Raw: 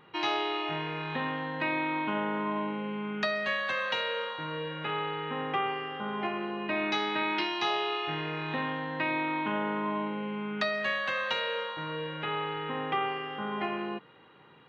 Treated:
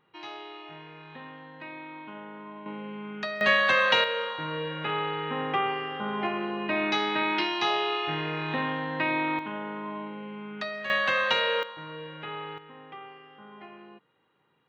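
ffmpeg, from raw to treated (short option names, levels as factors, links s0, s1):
-af "asetnsamples=n=441:p=0,asendcmd='2.66 volume volume -3.5dB;3.41 volume volume 9dB;4.04 volume volume 3dB;9.39 volume volume -4.5dB;10.9 volume volume 6dB;11.63 volume volume -4.5dB;12.58 volume volume -14dB',volume=0.266"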